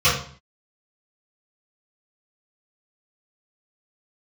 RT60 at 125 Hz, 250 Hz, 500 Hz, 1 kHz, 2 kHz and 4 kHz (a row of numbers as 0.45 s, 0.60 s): 0.55 s, 0.60 s, 0.45 s, 0.50 s, 0.45 s, 0.45 s